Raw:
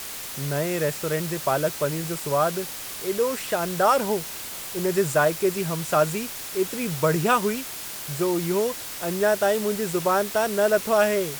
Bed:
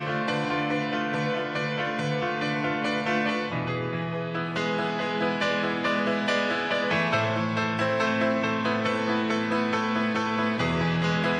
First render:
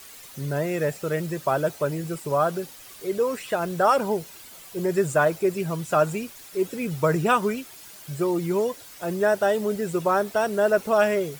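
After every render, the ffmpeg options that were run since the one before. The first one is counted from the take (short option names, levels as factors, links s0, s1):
-af "afftdn=nr=12:nf=-35"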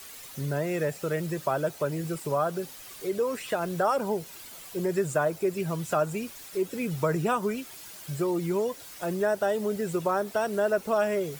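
-filter_complex "[0:a]acrossover=split=320|1300|4600[s0][s1][s2][s3];[s2]alimiter=level_in=1.06:limit=0.0631:level=0:latency=1:release=266,volume=0.944[s4];[s0][s1][s4][s3]amix=inputs=4:normalize=0,acompressor=threshold=0.0316:ratio=1.5"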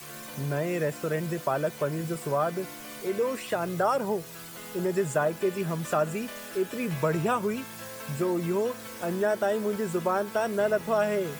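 -filter_complex "[1:a]volume=0.133[s0];[0:a][s0]amix=inputs=2:normalize=0"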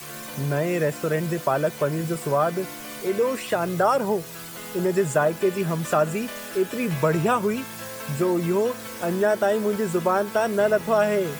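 -af "volume=1.78"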